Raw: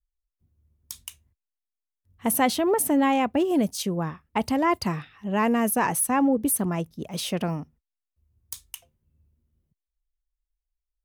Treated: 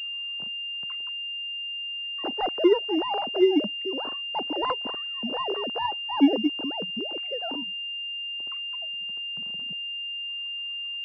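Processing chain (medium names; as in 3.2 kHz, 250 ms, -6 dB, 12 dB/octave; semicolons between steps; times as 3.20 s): formants replaced by sine waves; upward compressor, threshold -25 dBFS; class-D stage that switches slowly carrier 2.8 kHz; trim -2.5 dB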